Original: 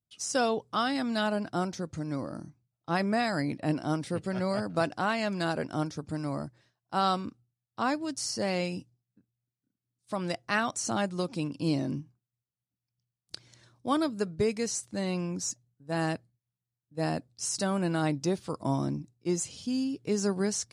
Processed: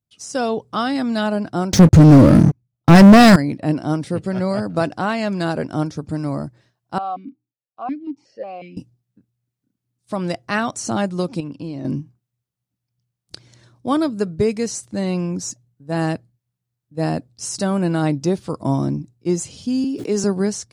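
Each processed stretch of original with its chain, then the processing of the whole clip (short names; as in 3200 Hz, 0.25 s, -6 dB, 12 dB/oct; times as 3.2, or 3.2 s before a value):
1.73–3.36 low shelf 290 Hz +9 dB + sample leveller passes 5
6.98–8.77 air absorption 100 m + vowel sequencer 5.5 Hz
11.4–11.85 tilt shelf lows -4.5 dB, about 1100 Hz + compressor 5:1, threshold -34 dBFS + LPF 1400 Hz 6 dB/oct
19.84–20.24 HPF 220 Hz 24 dB/oct + sustainer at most 48 dB/s
whole clip: tilt shelf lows +3 dB, about 710 Hz; AGC gain up to 4.5 dB; gain +3 dB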